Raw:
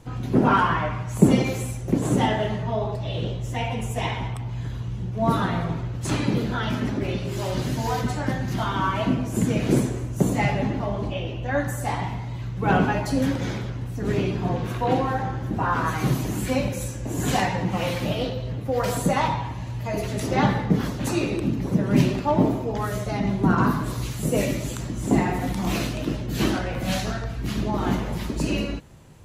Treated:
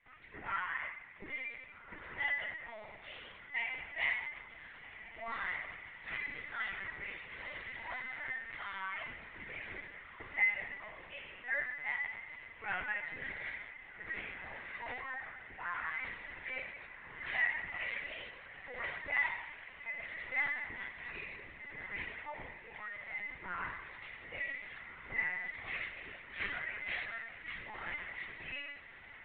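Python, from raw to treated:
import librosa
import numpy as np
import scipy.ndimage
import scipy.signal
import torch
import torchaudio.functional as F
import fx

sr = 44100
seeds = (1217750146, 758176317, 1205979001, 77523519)

y = fx.rider(x, sr, range_db=5, speed_s=2.0)
y = fx.bandpass_q(y, sr, hz=2000.0, q=8.1)
y = fx.echo_diffused(y, sr, ms=1547, feedback_pct=66, wet_db=-13)
y = fx.lpc_vocoder(y, sr, seeds[0], excitation='pitch_kept', order=16)
y = y * librosa.db_to_amplitude(2.0)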